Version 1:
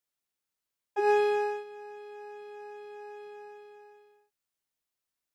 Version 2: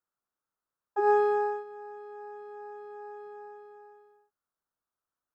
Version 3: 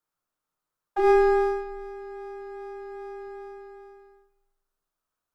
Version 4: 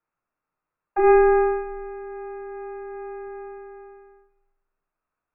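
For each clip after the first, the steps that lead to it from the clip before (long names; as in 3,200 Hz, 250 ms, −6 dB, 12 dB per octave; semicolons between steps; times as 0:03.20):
high shelf with overshoot 1,800 Hz −10 dB, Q 3
gain on one half-wave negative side −7 dB; frequency shifter −21 Hz; rectangular room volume 200 cubic metres, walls mixed, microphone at 0.52 metres; level +6 dB
linear-phase brick-wall low-pass 2,800 Hz; level +3.5 dB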